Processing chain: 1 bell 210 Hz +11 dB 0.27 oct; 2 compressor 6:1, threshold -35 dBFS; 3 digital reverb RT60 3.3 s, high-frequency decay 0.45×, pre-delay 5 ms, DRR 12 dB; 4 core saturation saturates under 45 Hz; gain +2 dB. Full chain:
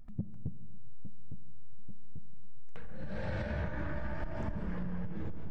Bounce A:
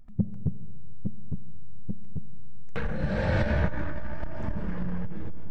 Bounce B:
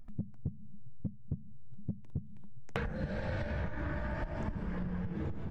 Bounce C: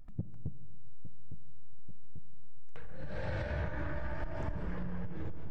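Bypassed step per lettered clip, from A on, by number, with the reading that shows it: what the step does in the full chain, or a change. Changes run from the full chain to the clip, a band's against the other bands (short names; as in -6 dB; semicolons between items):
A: 2, mean gain reduction 7.5 dB; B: 3, momentary loudness spread change -10 LU; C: 1, 250 Hz band -3.5 dB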